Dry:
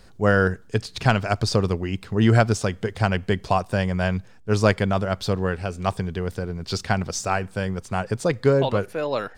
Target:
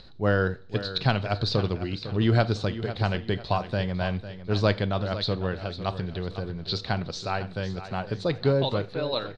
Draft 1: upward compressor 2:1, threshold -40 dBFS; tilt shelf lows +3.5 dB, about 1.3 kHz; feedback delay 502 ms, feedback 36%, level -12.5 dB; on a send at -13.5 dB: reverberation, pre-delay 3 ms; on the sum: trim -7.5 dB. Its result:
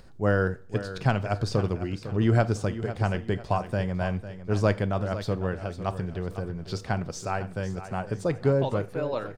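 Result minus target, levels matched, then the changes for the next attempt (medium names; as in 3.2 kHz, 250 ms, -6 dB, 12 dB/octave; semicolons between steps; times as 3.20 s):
4 kHz band -10.0 dB
add after upward compressor: resonant low-pass 4 kHz, resonance Q 10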